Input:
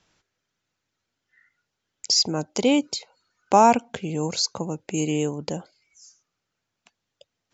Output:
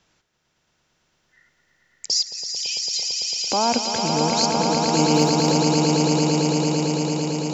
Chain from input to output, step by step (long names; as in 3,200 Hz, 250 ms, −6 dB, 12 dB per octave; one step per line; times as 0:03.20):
brickwall limiter −13.5 dBFS, peak gain reduction 9.5 dB
0:02.23–0:02.96: Chebyshev high-pass with heavy ripple 2,400 Hz, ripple 6 dB
on a send: echo that builds up and dies away 112 ms, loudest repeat 8, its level −6 dB
0:05.14–0:05.55: on the sum: surface crackle 110 per second −32 dBFS
level +2 dB